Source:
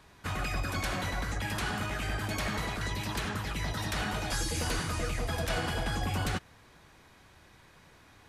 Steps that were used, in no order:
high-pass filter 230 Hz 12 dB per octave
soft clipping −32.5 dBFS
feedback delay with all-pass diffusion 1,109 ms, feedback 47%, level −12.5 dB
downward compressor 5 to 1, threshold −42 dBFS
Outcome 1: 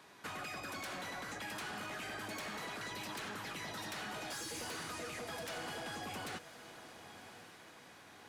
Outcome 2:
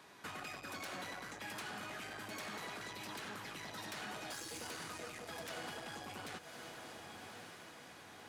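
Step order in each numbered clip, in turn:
high-pass filter, then soft clipping, then downward compressor, then feedback delay with all-pass diffusion
soft clipping, then feedback delay with all-pass diffusion, then downward compressor, then high-pass filter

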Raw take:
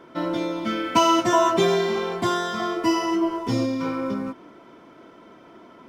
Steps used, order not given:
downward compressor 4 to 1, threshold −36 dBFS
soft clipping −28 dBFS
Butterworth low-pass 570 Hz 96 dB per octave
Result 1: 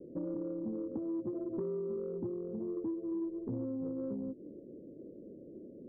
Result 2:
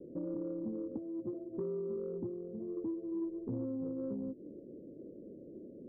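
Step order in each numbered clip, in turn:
Butterworth low-pass, then downward compressor, then soft clipping
downward compressor, then Butterworth low-pass, then soft clipping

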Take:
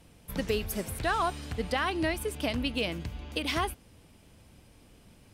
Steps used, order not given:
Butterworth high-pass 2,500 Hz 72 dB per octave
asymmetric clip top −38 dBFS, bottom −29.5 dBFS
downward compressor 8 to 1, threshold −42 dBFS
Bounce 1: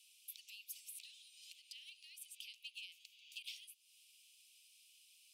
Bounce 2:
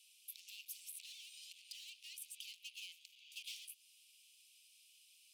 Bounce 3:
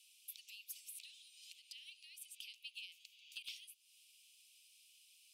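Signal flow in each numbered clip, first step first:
downward compressor, then asymmetric clip, then Butterworth high-pass
asymmetric clip, then downward compressor, then Butterworth high-pass
downward compressor, then Butterworth high-pass, then asymmetric clip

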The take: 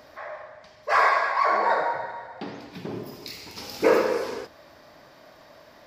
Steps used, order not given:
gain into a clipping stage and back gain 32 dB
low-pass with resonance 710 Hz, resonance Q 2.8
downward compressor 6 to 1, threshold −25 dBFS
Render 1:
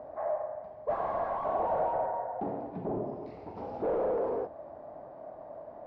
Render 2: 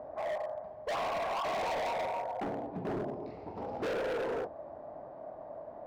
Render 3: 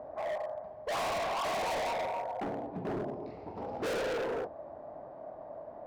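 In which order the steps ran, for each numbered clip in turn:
gain into a clipping stage and back, then downward compressor, then low-pass with resonance
downward compressor, then low-pass with resonance, then gain into a clipping stage and back
low-pass with resonance, then gain into a clipping stage and back, then downward compressor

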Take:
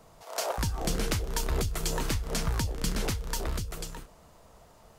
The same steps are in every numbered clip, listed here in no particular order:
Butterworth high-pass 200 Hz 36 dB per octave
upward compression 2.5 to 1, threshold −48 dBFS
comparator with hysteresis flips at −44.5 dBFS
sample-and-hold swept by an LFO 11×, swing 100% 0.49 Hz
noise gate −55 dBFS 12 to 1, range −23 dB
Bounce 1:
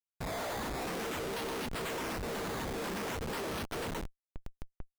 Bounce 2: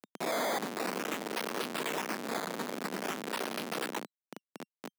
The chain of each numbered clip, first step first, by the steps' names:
sample-and-hold swept by an LFO, then Butterworth high-pass, then comparator with hysteresis, then noise gate, then upward compression
noise gate, then upward compression, then comparator with hysteresis, then sample-and-hold swept by an LFO, then Butterworth high-pass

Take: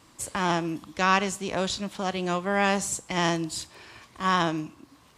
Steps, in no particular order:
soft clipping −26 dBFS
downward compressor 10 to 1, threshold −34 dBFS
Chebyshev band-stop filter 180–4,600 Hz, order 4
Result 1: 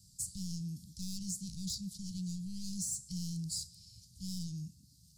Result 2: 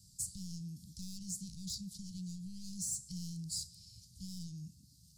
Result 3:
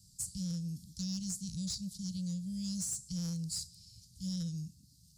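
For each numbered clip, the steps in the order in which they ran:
soft clipping, then Chebyshev band-stop filter, then downward compressor
soft clipping, then downward compressor, then Chebyshev band-stop filter
Chebyshev band-stop filter, then soft clipping, then downward compressor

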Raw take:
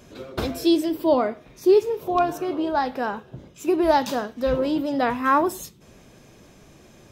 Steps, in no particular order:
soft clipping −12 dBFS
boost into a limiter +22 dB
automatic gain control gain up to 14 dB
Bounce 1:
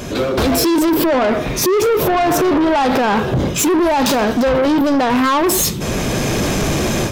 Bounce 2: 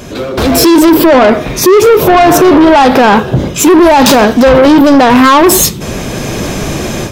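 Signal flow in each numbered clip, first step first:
automatic gain control, then boost into a limiter, then soft clipping
boost into a limiter, then soft clipping, then automatic gain control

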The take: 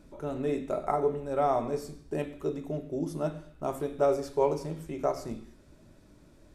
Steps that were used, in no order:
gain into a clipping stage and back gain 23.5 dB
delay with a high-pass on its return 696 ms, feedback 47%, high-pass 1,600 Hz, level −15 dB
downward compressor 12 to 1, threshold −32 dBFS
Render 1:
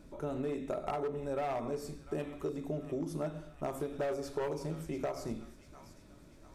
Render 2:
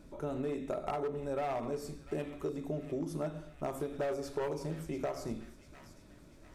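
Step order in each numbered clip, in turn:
delay with a high-pass on its return, then gain into a clipping stage and back, then downward compressor
gain into a clipping stage and back, then delay with a high-pass on its return, then downward compressor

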